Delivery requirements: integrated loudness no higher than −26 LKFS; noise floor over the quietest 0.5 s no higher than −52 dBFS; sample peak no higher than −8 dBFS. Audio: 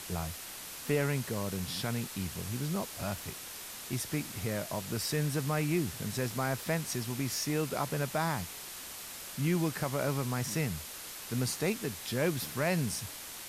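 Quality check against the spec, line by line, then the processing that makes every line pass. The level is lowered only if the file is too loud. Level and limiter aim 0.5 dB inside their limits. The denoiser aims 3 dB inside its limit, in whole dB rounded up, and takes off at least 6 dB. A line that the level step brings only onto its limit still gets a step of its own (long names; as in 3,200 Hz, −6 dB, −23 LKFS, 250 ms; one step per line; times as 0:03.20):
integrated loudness −34.0 LKFS: in spec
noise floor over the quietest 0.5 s −44 dBFS: out of spec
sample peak −18.0 dBFS: in spec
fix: broadband denoise 11 dB, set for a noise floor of −44 dBFS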